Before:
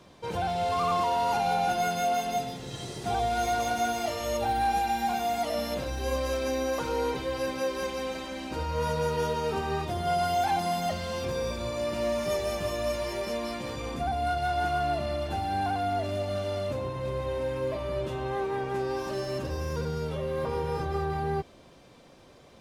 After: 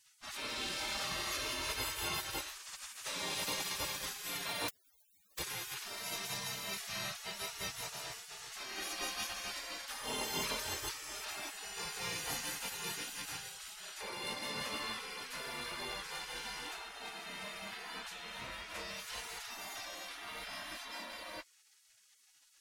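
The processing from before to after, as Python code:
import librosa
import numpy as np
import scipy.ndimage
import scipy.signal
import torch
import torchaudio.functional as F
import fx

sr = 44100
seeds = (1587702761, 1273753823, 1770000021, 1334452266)

y = fx.overflow_wrap(x, sr, gain_db=33.0, at=(4.68, 5.39))
y = fx.spec_gate(y, sr, threshold_db=-25, keep='weak')
y = y * 10.0 ** (4.5 / 20.0)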